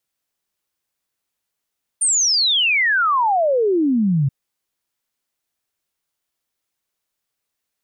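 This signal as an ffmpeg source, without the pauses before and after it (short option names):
-f lavfi -i "aevalsrc='0.2*clip(min(t,2.28-t)/0.01,0,1)*sin(2*PI*9200*2.28/log(130/9200)*(exp(log(130/9200)*t/2.28)-1))':d=2.28:s=44100"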